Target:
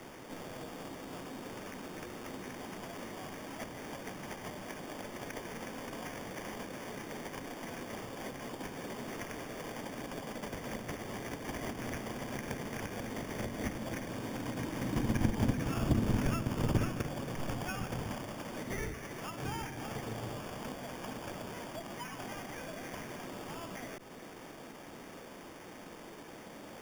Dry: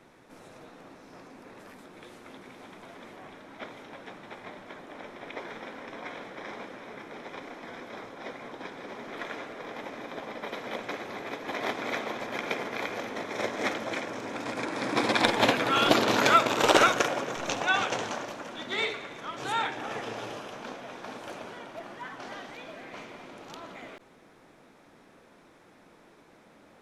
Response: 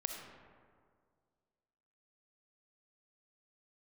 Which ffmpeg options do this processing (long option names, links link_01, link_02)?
-filter_complex "[0:a]bandreject=frequency=1400:width=13,acrusher=samples=11:mix=1:aa=0.000001,acrossover=split=190[link_01][link_02];[link_02]acompressor=threshold=-50dB:ratio=5[link_03];[link_01][link_03]amix=inputs=2:normalize=0,volume=8dB"